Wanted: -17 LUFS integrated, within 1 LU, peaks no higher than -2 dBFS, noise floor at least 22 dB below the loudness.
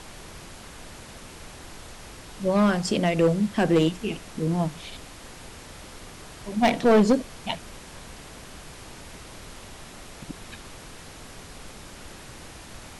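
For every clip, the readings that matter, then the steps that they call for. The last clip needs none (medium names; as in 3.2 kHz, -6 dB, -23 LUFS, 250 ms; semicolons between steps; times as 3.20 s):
clipped samples 0.6%; clipping level -13.0 dBFS; noise floor -44 dBFS; noise floor target -46 dBFS; loudness -23.5 LUFS; peak level -13.0 dBFS; loudness target -17.0 LUFS
-> clip repair -13 dBFS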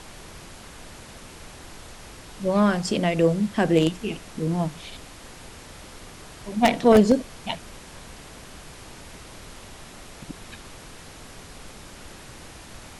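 clipped samples 0.0%; noise floor -44 dBFS; noise floor target -45 dBFS
-> noise print and reduce 6 dB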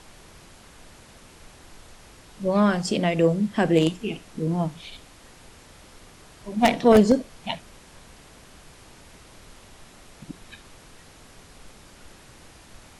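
noise floor -50 dBFS; loudness -22.5 LUFS; peak level -4.0 dBFS; loudness target -17.0 LUFS
-> trim +5.5 dB; peak limiter -2 dBFS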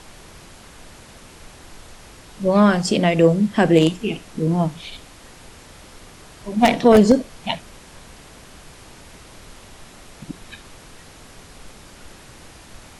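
loudness -17.5 LUFS; peak level -2.0 dBFS; noise floor -45 dBFS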